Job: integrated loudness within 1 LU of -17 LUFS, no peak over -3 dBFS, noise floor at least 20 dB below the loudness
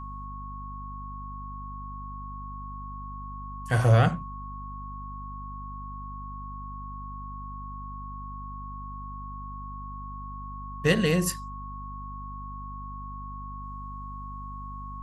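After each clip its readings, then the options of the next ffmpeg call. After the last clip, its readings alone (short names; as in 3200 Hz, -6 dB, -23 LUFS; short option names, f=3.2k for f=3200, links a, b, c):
hum 50 Hz; harmonics up to 250 Hz; hum level -37 dBFS; steady tone 1100 Hz; tone level -39 dBFS; loudness -33.0 LUFS; peak -7.0 dBFS; loudness target -17.0 LUFS
-> -af "bandreject=f=50:t=h:w=6,bandreject=f=100:t=h:w=6,bandreject=f=150:t=h:w=6,bandreject=f=200:t=h:w=6,bandreject=f=250:t=h:w=6"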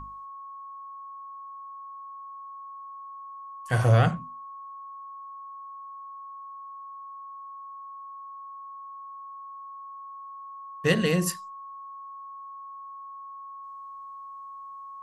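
hum none; steady tone 1100 Hz; tone level -39 dBFS
-> -af "bandreject=f=1.1k:w=30"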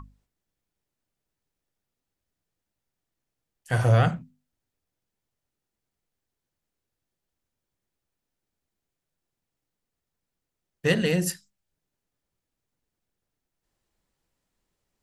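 steady tone none; loudness -24.0 LUFS; peak -8.0 dBFS; loudness target -17.0 LUFS
-> -af "volume=7dB,alimiter=limit=-3dB:level=0:latency=1"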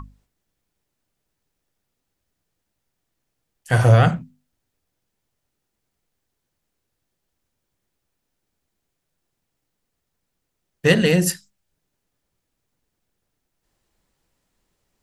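loudness -17.5 LUFS; peak -3.0 dBFS; noise floor -78 dBFS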